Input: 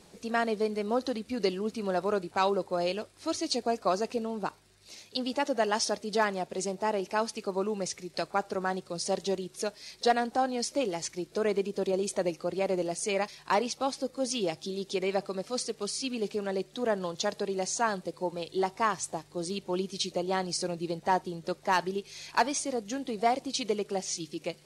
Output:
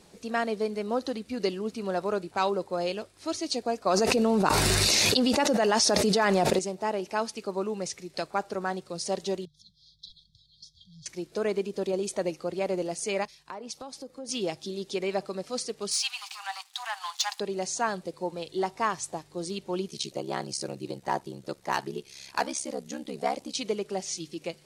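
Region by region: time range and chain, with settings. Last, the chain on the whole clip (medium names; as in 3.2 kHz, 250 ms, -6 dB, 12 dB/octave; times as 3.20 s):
3.86–6.59 s: band-stop 3.2 kHz, Q 18 + level flattener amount 100%
9.45–11.06 s: brick-wall FIR band-stop 170–3200 Hz + distance through air 310 m
13.25–14.29 s: dynamic bell 2.5 kHz, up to -4 dB, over -46 dBFS, Q 1.1 + compression 12:1, threshold -35 dBFS + three bands expanded up and down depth 100%
15.91–17.40 s: treble shelf 4.8 kHz +4.5 dB + waveshaping leveller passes 2 + rippled Chebyshev high-pass 750 Hz, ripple 3 dB
19.87–23.55 s: treble shelf 9.7 kHz +8 dB + ring modulator 34 Hz
whole clip: none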